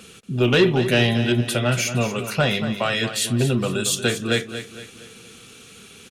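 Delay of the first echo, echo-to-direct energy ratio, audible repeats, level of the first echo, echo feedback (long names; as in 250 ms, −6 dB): 232 ms, −10.0 dB, 4, −11.0 dB, 42%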